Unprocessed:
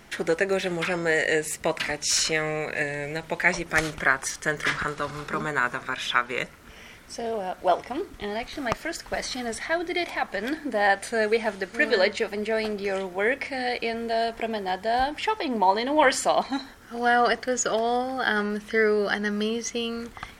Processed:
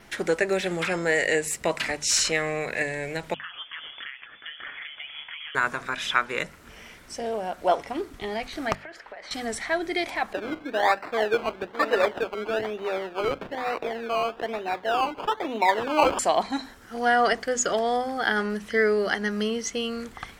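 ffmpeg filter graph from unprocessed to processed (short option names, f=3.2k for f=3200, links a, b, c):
-filter_complex "[0:a]asettb=1/sr,asplit=3[a][b][c];[a]atrim=end=3.344[d];[b]atrim=start=3.34:end=5.55,asetpts=PTS-STARTPTS,afade=t=in:d=0.004:c=qsin,afade=t=out:st=2.206:d=0.004:c=qsin,acompressor=threshold=-29dB:ratio=12:attack=3.2:release=140:knee=1:detection=peak,flanger=delay=1.4:depth=7.3:regen=48:speed=1.8:shape=sinusoidal,lowpass=f=3k:t=q:w=0.5098,lowpass=f=3k:t=q:w=0.6013,lowpass=f=3k:t=q:w=0.9,lowpass=f=3k:t=q:w=2.563,afreqshift=-3500[e];[c]atrim=start=5.546[f];[d][e]acrossfade=d=0.004:c1=hsin:c2=qsin[g];[g][f]acrossfade=d=0.004:c1=qsin:c2=hsin,asettb=1/sr,asplit=3[h][i][j];[h]atrim=end=8.754[k];[i]atrim=start=8.75:end=9.31,asetpts=PTS-STARTPTS,afade=t=in:d=0.004:c=qsin,afade=t=out:st=0.556:d=0.004:c=qsin,acrossover=split=380 3300:gain=0.126 1 0.0708[l][m][n];[l][m][n]amix=inputs=3:normalize=0,acompressor=threshold=-36dB:ratio=16:attack=3.2:release=140:knee=1:detection=peak[o];[j]atrim=start=9.306[p];[k][o]acrossfade=d=0.004:c1=hsin:c2=qsin[q];[q][p]acrossfade=d=0.004:c1=qsin:c2=hsin,asettb=1/sr,asplit=3[r][s][t];[r]atrim=end=10.334[u];[s]atrim=start=10.33:end=16.19,asetpts=PTS-STARTPTS,afade=t=in:d=0.004:c=qsin,afade=t=out:st=5.856:d=0.004:c=qsin,acrusher=samples=19:mix=1:aa=0.000001:lfo=1:lforange=11.4:lforate=1.1,acrossover=split=260 3600:gain=0.224 1 0.0891[v][w][x];[v][w][x]amix=inputs=3:normalize=0[y];[t]atrim=start=16.186[z];[u][y]acrossfade=d=0.004:c1=hsin:c2=qsin[aa];[aa][z]acrossfade=d=0.004:c1=qsin:c2=hsin,adynamicequalizer=threshold=0.002:dfrequency=7600:dqfactor=7.6:tfrequency=7600:tqfactor=7.6:attack=5:release=100:ratio=0.375:range=2.5:mode=boostabove:tftype=bell,bandreject=f=50:t=h:w=6,bandreject=f=100:t=h:w=6,bandreject=f=150:t=h:w=6,bandreject=f=200:t=h:w=6,bandreject=f=250:t=h:w=6"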